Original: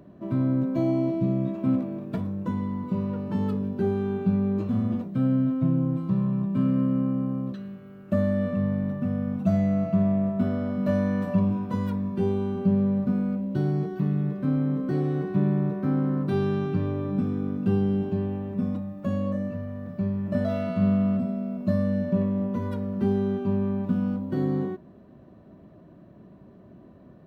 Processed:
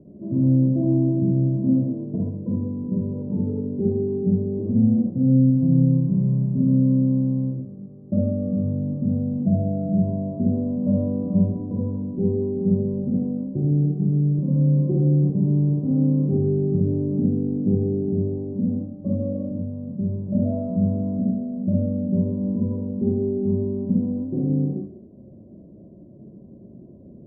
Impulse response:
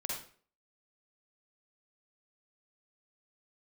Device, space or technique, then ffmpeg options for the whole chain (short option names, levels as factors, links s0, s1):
next room: -filter_complex "[0:a]lowpass=f=510:w=0.5412,lowpass=f=510:w=1.3066[s0];[1:a]atrim=start_sample=2205[s1];[s0][s1]afir=irnorm=-1:irlink=0,asettb=1/sr,asplit=3[s2][s3][s4];[s2]atrim=end=14.384[s5];[s3]atrim=start=14.38:end=15.3,asetpts=PTS-STARTPTS,afade=t=in:d=0.004:c=qsin,afade=t=out:st=0.916:d=0.004:c=qsin,aecho=1:1:5.7:0.73,atrim=end_sample=40572[s6];[s4]atrim=start=15.296[s7];[s5][s6]acrossfade=d=0.004:c1=hsin:c2=qsin[s8];[s8][s7]acrossfade=d=0.004:c1=qsin:c2=hsin,volume=1.58"